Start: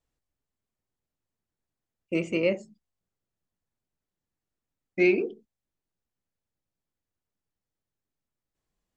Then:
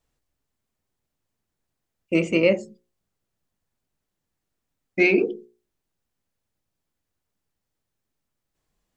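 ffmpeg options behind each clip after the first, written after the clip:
ffmpeg -i in.wav -af "bandreject=frequency=60:width_type=h:width=6,bandreject=frequency=120:width_type=h:width=6,bandreject=frequency=180:width_type=h:width=6,bandreject=frequency=240:width_type=h:width=6,bandreject=frequency=300:width_type=h:width=6,bandreject=frequency=360:width_type=h:width=6,bandreject=frequency=420:width_type=h:width=6,bandreject=frequency=480:width_type=h:width=6,bandreject=frequency=540:width_type=h:width=6,volume=7dB" out.wav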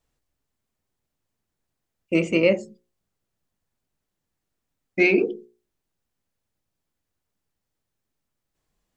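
ffmpeg -i in.wav -af anull out.wav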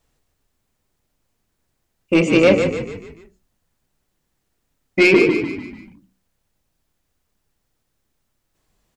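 ffmpeg -i in.wav -filter_complex "[0:a]asoftclip=type=tanh:threshold=-15dB,asplit=2[link_01][link_02];[link_02]asplit=5[link_03][link_04][link_05][link_06][link_07];[link_03]adelay=147,afreqshift=-34,volume=-7dB[link_08];[link_04]adelay=294,afreqshift=-68,volume=-13.7dB[link_09];[link_05]adelay=441,afreqshift=-102,volume=-20.5dB[link_10];[link_06]adelay=588,afreqshift=-136,volume=-27.2dB[link_11];[link_07]adelay=735,afreqshift=-170,volume=-34dB[link_12];[link_08][link_09][link_10][link_11][link_12]amix=inputs=5:normalize=0[link_13];[link_01][link_13]amix=inputs=2:normalize=0,volume=8.5dB" out.wav

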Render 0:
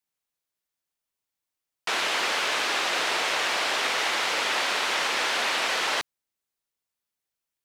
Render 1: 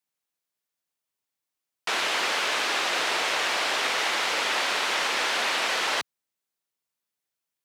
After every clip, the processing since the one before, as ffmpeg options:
ffmpeg -i in.wav -af "highpass=100" out.wav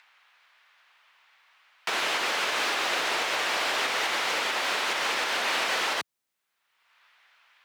ffmpeg -i in.wav -filter_complex "[0:a]acrossover=split=170|880|3100[link_01][link_02][link_03][link_04];[link_03]acompressor=mode=upward:threshold=-39dB:ratio=2.5[link_05];[link_04]volume=31.5dB,asoftclip=hard,volume=-31.5dB[link_06];[link_01][link_02][link_05][link_06]amix=inputs=4:normalize=0,alimiter=limit=-21dB:level=0:latency=1:release=225,volume=3dB" out.wav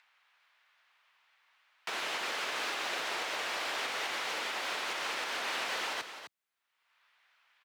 ffmpeg -i in.wav -af "aecho=1:1:258:0.316,volume=-8.5dB" out.wav

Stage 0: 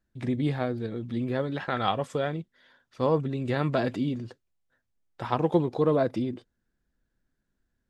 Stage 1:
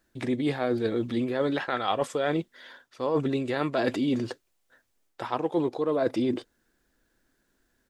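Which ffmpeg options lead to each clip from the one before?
ffmpeg -i in.wav -af "firequalizer=gain_entry='entry(170,0);entry(300,10);entry(8200,13)':delay=0.05:min_phase=1,areverse,acompressor=threshold=-24dB:ratio=16,areverse,volume=1.5dB" out.wav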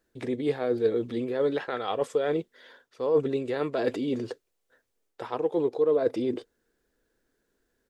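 ffmpeg -i in.wav -af "equalizer=frequency=450:width_type=o:width=0.45:gain=11,volume=-5dB" out.wav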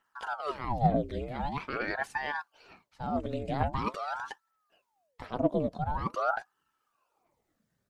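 ffmpeg -i in.wav -af "aphaser=in_gain=1:out_gain=1:delay=1.1:decay=0.52:speed=1.1:type=triangular,aeval=exprs='val(0)*sin(2*PI*740*n/s+740*0.8/0.45*sin(2*PI*0.45*n/s))':channel_layout=same,volume=-2.5dB" out.wav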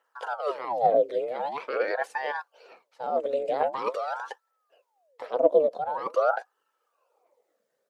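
ffmpeg -i in.wav -af "highpass=frequency=500:width_type=q:width=5.6" out.wav

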